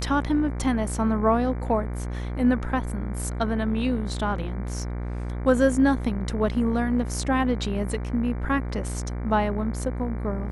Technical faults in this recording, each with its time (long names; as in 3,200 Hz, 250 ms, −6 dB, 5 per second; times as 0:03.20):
mains buzz 60 Hz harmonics 39 −30 dBFS